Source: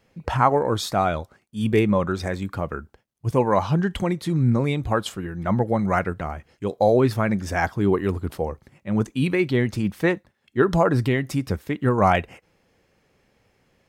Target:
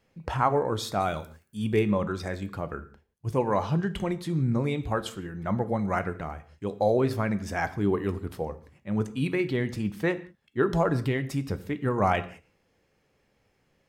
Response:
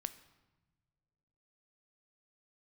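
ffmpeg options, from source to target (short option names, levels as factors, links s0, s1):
-filter_complex "[0:a]asettb=1/sr,asplit=3[s0][s1][s2];[s0]atrim=end=1.004[s3];[s1]atrim=start=1:end=1.57,asetpts=PTS-STARTPTS,afade=t=in:d=0.004:c=qsin,afade=t=out:st=0.566:d=0.004:c=qsin,aemphasis=mode=production:type=50fm[s4];[s2]atrim=start=1.566[s5];[s3][s4]acrossfade=d=0.004:c1=hsin:c2=qsin[s6];[s6][s5]acrossfade=d=0.004:c1=qsin:c2=hsin[s7];[1:a]atrim=start_sample=2205,afade=t=out:st=0.34:d=0.01,atrim=end_sample=15435,asetrate=66150,aresample=44100[s8];[s7][s8]afir=irnorm=-1:irlink=0"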